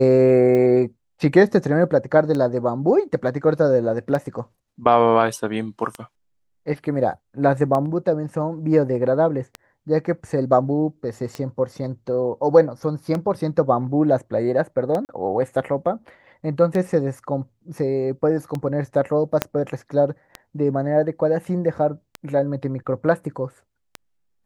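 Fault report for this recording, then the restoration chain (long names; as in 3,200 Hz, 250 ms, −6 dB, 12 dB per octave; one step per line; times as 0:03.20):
scratch tick 33 1/3 rpm −14 dBFS
0:15.05–0:15.09: drop-out 39 ms
0:19.42: click −4 dBFS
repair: click removal
repair the gap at 0:15.05, 39 ms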